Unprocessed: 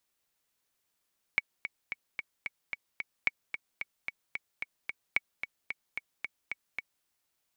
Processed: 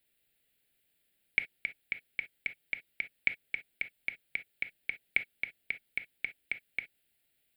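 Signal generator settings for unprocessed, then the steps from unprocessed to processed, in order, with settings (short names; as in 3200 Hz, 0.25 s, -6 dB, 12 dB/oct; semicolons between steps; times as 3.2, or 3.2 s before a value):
metronome 222 bpm, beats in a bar 7, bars 3, 2240 Hz, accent 9.5 dB -12 dBFS
in parallel at -0.5 dB: limiter -24 dBFS; on the sum: fixed phaser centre 2600 Hz, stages 4; non-linear reverb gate 80 ms flat, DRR 9 dB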